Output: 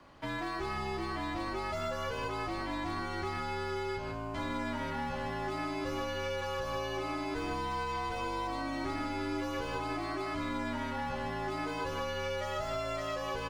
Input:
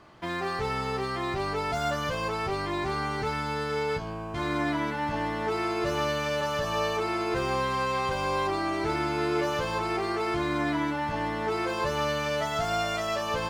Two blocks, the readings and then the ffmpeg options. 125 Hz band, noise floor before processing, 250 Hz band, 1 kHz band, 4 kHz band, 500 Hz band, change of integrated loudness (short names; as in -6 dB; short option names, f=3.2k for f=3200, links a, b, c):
-7.0 dB, -32 dBFS, -6.0 dB, -7.0 dB, -7.0 dB, -7.5 dB, -7.0 dB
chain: -filter_complex "[0:a]asplit=2[a][b];[b]adelay=151.6,volume=-7dB,highshelf=f=4k:g=-3.41[c];[a][c]amix=inputs=2:normalize=0,afreqshift=-53,acrossover=split=100|3400[d][e][f];[d]acompressor=threshold=-40dB:ratio=4[g];[e]acompressor=threshold=-30dB:ratio=4[h];[f]acompressor=threshold=-48dB:ratio=4[i];[g][h][i]amix=inputs=3:normalize=0,volume=-3.5dB"